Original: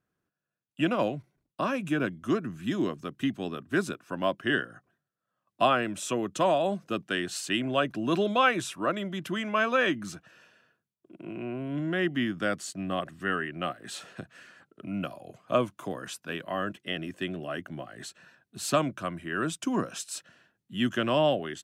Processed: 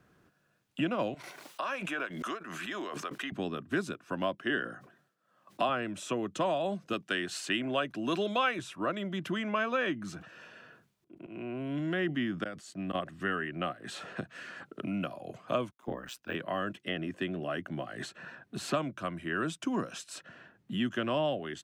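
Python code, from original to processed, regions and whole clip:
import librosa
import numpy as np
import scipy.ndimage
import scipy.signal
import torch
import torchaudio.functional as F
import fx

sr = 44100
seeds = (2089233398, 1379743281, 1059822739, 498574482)

y = fx.chain(x, sr, fx.highpass(hz=750.0, slope=12),
    fx.tremolo_shape(shape='triangle', hz=3.8, depth_pct=65),
    fx.pre_swell(db_per_s=29.0), at=(1.14, 3.32))
y = fx.chain(y, sr, fx.highpass(hz=190.0, slope=12),
    fx.sustainer(db_per_s=110.0), at=(4.39, 5.69))
y = fx.chain(y, sr, fx.highpass(hz=180.0, slope=6),
    fx.high_shelf(hz=2500.0, db=9.5), at=(6.93, 8.59))
y = fx.chain(y, sr, fx.auto_swell(attack_ms=718.0),
    fx.sustainer(db_per_s=130.0), at=(10.0, 12.95))
y = fx.chain(y, sr, fx.ring_mod(carrier_hz=62.0),
    fx.resample_bad(factor=2, down='filtered', up='hold'),
    fx.band_widen(depth_pct=100), at=(15.71, 16.35))
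y = fx.high_shelf(y, sr, hz=6900.0, db=-9.5)
y = fx.band_squash(y, sr, depth_pct=70)
y = y * librosa.db_to_amplitude(-3.5)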